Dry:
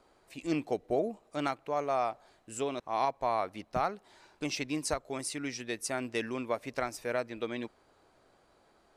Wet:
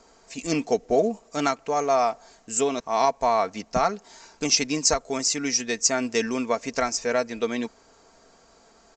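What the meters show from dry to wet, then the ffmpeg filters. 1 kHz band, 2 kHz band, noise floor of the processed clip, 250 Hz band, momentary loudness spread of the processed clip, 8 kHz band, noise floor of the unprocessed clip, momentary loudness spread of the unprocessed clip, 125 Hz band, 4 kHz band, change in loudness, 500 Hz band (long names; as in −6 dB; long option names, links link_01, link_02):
+8.5 dB, +8.0 dB, −57 dBFS, +8.0 dB, 7 LU, +17.0 dB, −67 dBFS, 7 LU, +5.5 dB, +14.5 dB, +10.0 dB, +9.0 dB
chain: -af "aexciter=amount=4.9:drive=4.6:freq=5100,aecho=1:1:4.4:0.51,volume=7.5dB" -ar 16000 -c:a pcm_alaw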